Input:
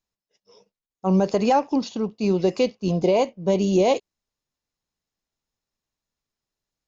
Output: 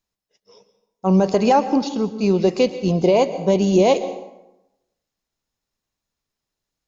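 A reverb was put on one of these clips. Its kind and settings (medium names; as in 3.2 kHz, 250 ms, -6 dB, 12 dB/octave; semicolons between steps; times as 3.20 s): plate-style reverb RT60 0.94 s, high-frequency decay 0.65×, pre-delay 105 ms, DRR 12.5 dB; trim +3.5 dB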